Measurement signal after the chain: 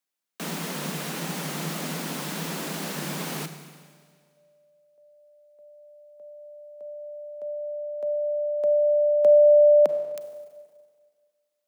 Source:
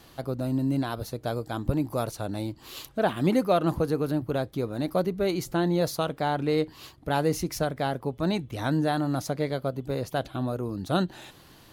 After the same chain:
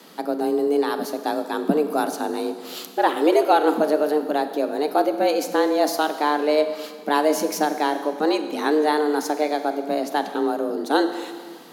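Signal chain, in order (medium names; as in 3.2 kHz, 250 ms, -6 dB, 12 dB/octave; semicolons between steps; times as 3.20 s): Schroeder reverb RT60 1.8 s, combs from 32 ms, DRR 9 dB; frequency shift +150 Hz; trim +5.5 dB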